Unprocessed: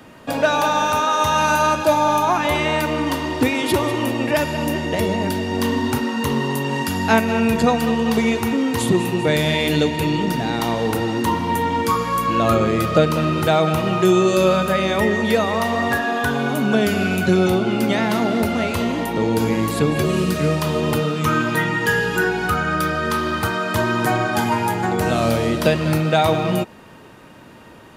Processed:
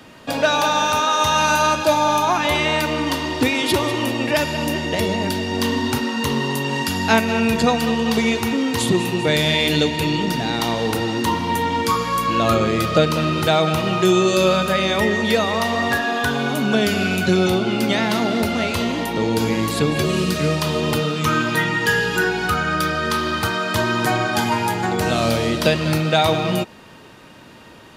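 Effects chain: peaking EQ 4.3 kHz +6.5 dB 1.7 oct; trim -1 dB

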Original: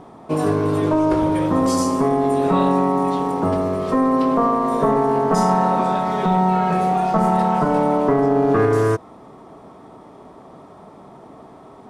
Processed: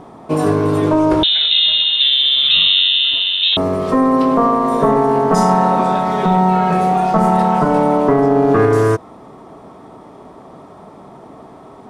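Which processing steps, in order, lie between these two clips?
1.23–3.57 s: frequency inversion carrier 3.9 kHz; trim +4 dB

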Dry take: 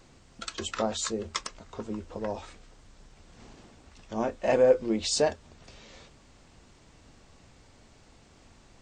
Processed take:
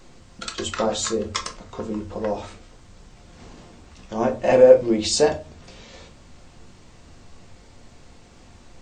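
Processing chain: simulated room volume 170 m³, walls furnished, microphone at 0.91 m; trim +5 dB

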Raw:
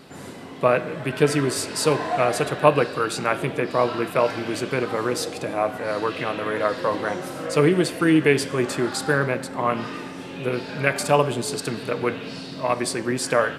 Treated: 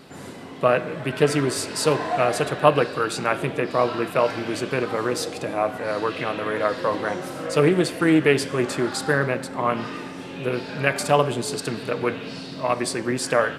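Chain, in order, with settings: loudspeaker Doppler distortion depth 0.16 ms

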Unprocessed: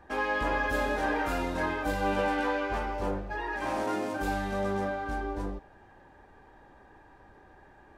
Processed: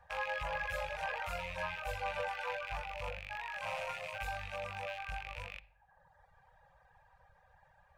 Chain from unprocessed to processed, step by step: rattle on loud lows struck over -45 dBFS, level -21 dBFS; Chebyshev band-stop 170–500 Hz, order 4; on a send at -17.5 dB: high-order bell 3 kHz +10.5 dB + reverberation RT60 0.50 s, pre-delay 46 ms; on the sum: reverb removal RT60 0.95 s; trim -6.5 dB

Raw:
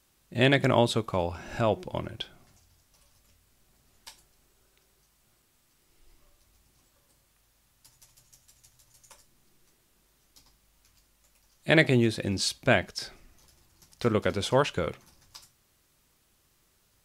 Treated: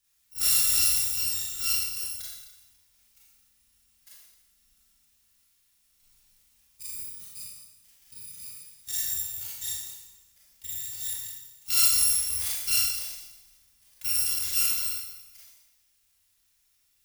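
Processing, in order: bit-reversed sample order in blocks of 256 samples; amplifier tone stack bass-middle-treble 5-5-5; ever faster or slower copies 119 ms, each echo +5 st, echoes 2, each echo -6 dB; Schroeder reverb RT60 1 s, combs from 28 ms, DRR -6.5 dB; trim -1.5 dB

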